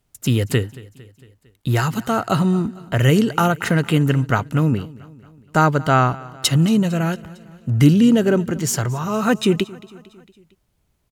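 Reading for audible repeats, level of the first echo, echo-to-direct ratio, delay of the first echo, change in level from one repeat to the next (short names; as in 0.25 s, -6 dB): 3, -21.0 dB, -19.5 dB, 0.227 s, -5.0 dB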